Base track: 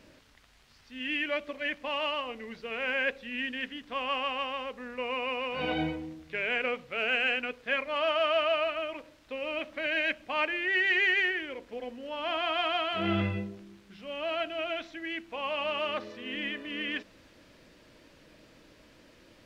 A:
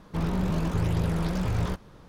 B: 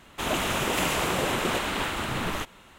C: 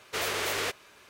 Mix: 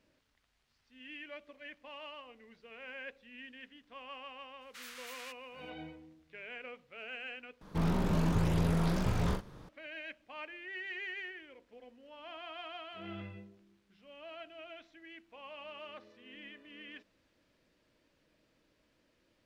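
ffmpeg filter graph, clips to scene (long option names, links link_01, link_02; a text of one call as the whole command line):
ffmpeg -i bed.wav -i cue0.wav -i cue1.wav -i cue2.wav -filter_complex "[0:a]volume=-16dB[link_01];[3:a]highpass=frequency=1200:width=0.5412,highpass=frequency=1200:width=1.3066[link_02];[1:a]asplit=2[link_03][link_04];[link_04]adelay=41,volume=-6dB[link_05];[link_03][link_05]amix=inputs=2:normalize=0[link_06];[link_01]asplit=2[link_07][link_08];[link_07]atrim=end=7.614[link_09];[link_06]atrim=end=2.08,asetpts=PTS-STARTPTS,volume=-3dB[link_10];[link_08]atrim=start=9.686[link_11];[link_02]atrim=end=1.09,asetpts=PTS-STARTPTS,volume=-16.5dB,afade=type=in:duration=0.004:curve=hsin,afade=type=out:start_time=1.086:duration=0.004:curve=hsin,adelay=203301S[link_12];[link_09][link_10]acrossfade=duration=0.004:curve1=hsin:curve2=hsin[link_13];[link_13][link_11]acrossfade=duration=0.004:curve1=hsin:curve2=hsin[link_14];[link_14][link_12]amix=inputs=2:normalize=0" out.wav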